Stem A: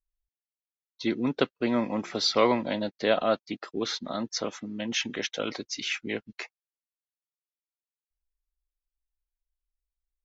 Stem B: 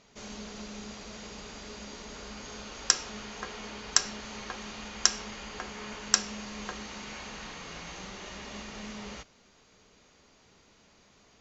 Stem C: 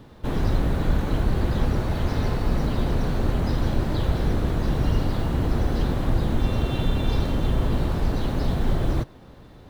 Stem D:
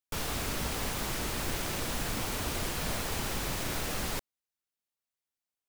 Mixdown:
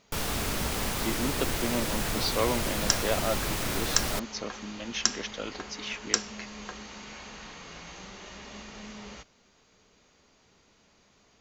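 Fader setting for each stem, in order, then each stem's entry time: −5.5 dB, −2.0 dB, muted, +3.0 dB; 0.00 s, 0.00 s, muted, 0.00 s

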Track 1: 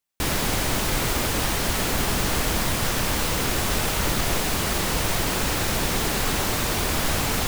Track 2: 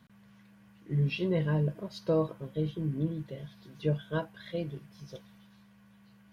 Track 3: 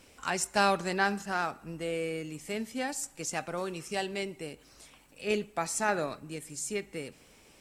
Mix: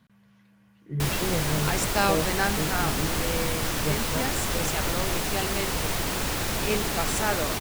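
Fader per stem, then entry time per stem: −4.0, −1.0, +1.0 decibels; 0.80, 0.00, 1.40 seconds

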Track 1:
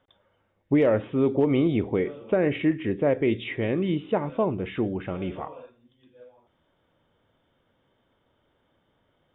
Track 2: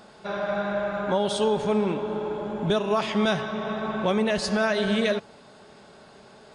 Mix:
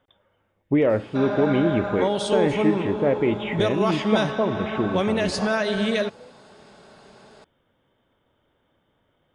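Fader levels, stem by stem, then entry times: +1.0, +0.5 decibels; 0.00, 0.90 seconds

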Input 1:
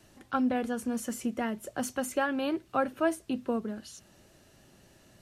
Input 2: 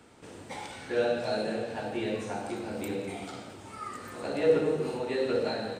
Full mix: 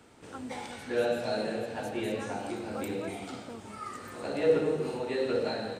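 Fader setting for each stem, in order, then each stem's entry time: −14.5, −1.0 decibels; 0.00, 0.00 seconds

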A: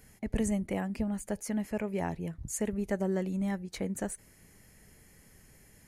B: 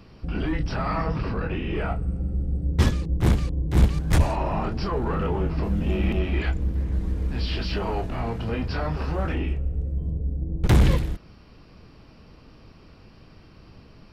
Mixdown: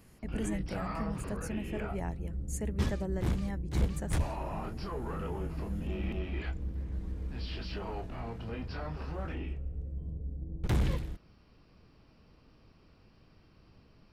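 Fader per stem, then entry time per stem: −6.0, −11.5 decibels; 0.00, 0.00 seconds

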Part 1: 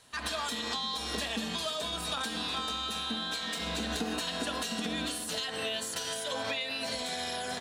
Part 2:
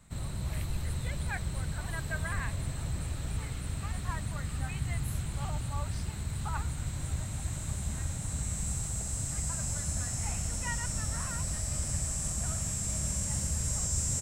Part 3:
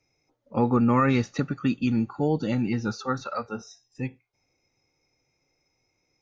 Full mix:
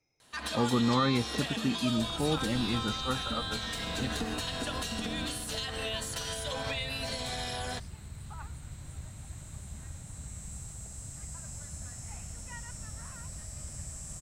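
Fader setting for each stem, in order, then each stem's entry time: −1.5, −9.0, −6.0 decibels; 0.20, 1.85, 0.00 seconds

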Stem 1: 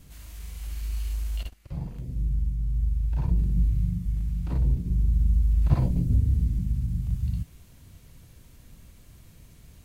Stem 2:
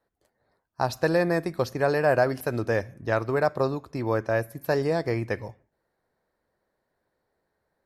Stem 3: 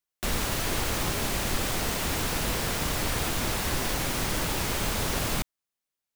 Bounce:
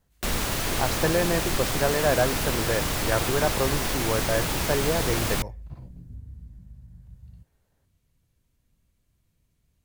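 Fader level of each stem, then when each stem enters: −19.5, −1.5, +1.5 decibels; 0.00, 0.00, 0.00 seconds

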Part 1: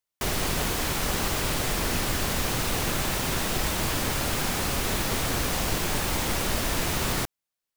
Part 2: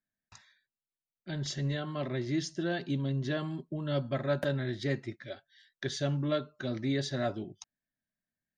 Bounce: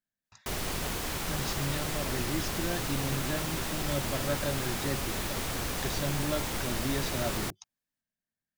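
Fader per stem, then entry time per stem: −6.5, −2.5 decibels; 0.25, 0.00 seconds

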